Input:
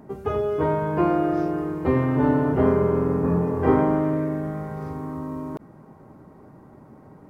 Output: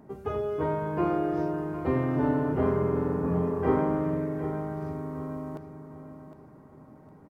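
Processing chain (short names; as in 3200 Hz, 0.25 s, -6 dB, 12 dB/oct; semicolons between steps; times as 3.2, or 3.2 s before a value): feedback echo 0.759 s, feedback 33%, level -11 dB; gain -6 dB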